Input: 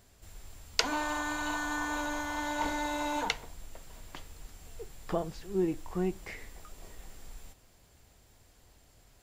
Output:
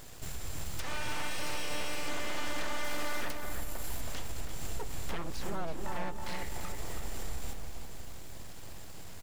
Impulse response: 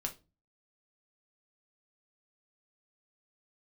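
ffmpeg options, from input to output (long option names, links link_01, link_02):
-filter_complex "[0:a]asettb=1/sr,asplit=3[link_01][link_02][link_03];[link_01]atrim=end=1.274[link_04];[link_02]atrim=start=1.27:end=2.08,asetpts=PTS-STARTPTS,afade=type=in:duration=0.004:curve=qsin,afade=type=out:start_time=0.806:duration=0.004:curve=qsin,highpass=frequency=840:poles=1[link_05];[link_03]atrim=start=2.076[link_06];[link_04][link_05]acrossfade=duration=0.004:curve1=hsin:curve2=qsin[link_07];[link_07][link_06]acrossfade=duration=0.004:curve1=qsin:curve2=hsin,asettb=1/sr,asplit=3[link_08][link_09][link_10];[link_08]atrim=end=2.844[link_11];[link_09]atrim=start=2.84:end=4.01,asetpts=PTS-STARTPTS,afade=type=in:duration=0.004:curve=qsin,afade=type=out:start_time=1.166:duration=0.004:curve=qsin,equalizer=frequency=12000:width_type=o:width=0.5:gain=11[link_12];[link_10]atrim=start=4.006[link_13];[link_11][link_12]acrossfade=duration=0.004:curve1=hsin:curve2=qsin[link_14];[link_14][link_13]acrossfade=duration=0.004:curve1=qsin:curve2=hsin,asettb=1/sr,asplit=3[link_15][link_16][link_17];[link_15]atrim=end=5.864[link_18];[link_16]atrim=start=5.86:end=6.43,asetpts=PTS-STARTPTS,afade=type=in:duration=0.004:curve=qsin,afade=type=out:start_time=0.566:duration=0.004:curve=qsin,aeval=exprs='val(0)*sin(2*PI*440*n/s)':channel_layout=same[link_19];[link_17]atrim=start=6.426[link_20];[link_18][link_19]acrossfade=duration=0.004:curve1=hsin:curve2=qsin[link_21];[link_21][link_20]acrossfade=duration=0.004:curve1=qsin:curve2=hsin,acompressor=threshold=-44dB:ratio=3,aeval=exprs='(mod(75*val(0)+1,2)-1)/75':channel_layout=same,alimiter=level_in=17.5dB:limit=-24dB:level=0:latency=1:release=135,volume=-17.5dB,aeval=exprs='abs(val(0))':channel_layout=same,asplit=2[link_22][link_23];[link_23]adelay=323,lowpass=frequency=1700:poles=1,volume=-4dB,asplit=2[link_24][link_25];[link_25]adelay=323,lowpass=frequency=1700:poles=1,volume=0.47,asplit=2[link_26][link_27];[link_27]adelay=323,lowpass=frequency=1700:poles=1,volume=0.47,asplit=2[link_28][link_29];[link_29]adelay=323,lowpass=frequency=1700:poles=1,volume=0.47,asplit=2[link_30][link_31];[link_31]adelay=323,lowpass=frequency=1700:poles=1,volume=0.47,asplit=2[link_32][link_33];[link_33]adelay=323,lowpass=frequency=1700:poles=1,volume=0.47[link_34];[link_22][link_24][link_26][link_28][link_30][link_32][link_34]amix=inputs=7:normalize=0,volume=14dB"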